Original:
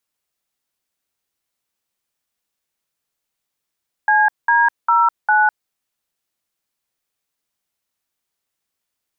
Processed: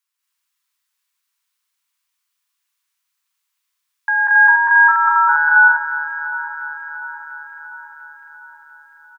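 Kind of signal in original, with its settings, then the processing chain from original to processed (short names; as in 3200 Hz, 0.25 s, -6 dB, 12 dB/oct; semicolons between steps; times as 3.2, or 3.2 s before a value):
DTMF "CD09", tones 0.204 s, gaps 0.198 s, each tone -13.5 dBFS
regenerating reverse delay 0.348 s, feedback 73%, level -13 dB; elliptic high-pass 980 Hz, stop band 50 dB; loudspeakers at several distances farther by 65 m -1 dB, 78 m -1 dB, 94 m -1 dB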